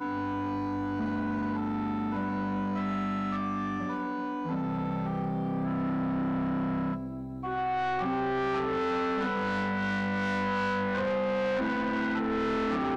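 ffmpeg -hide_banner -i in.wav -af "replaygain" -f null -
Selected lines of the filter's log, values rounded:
track_gain = +13.8 dB
track_peak = 0.034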